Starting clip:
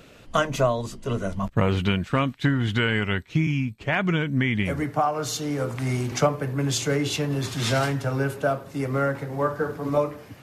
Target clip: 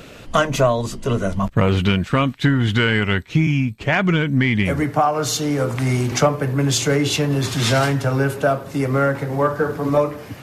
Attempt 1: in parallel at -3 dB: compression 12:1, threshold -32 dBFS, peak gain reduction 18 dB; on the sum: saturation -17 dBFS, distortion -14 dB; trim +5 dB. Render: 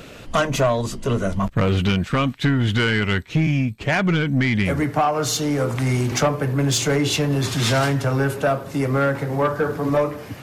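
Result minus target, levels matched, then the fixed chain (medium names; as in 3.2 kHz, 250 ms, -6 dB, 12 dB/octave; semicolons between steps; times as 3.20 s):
saturation: distortion +11 dB
in parallel at -3 dB: compression 12:1, threshold -32 dBFS, peak gain reduction 18 dB; on the sum: saturation -9 dBFS, distortion -24 dB; trim +5 dB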